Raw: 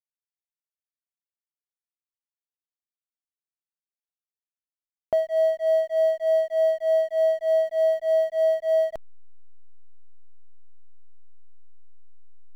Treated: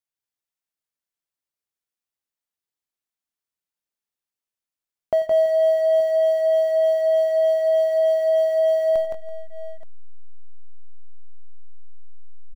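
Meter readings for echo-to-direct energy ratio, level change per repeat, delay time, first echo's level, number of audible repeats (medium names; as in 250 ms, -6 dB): -2.5 dB, no regular repeats, 91 ms, -18.0 dB, 4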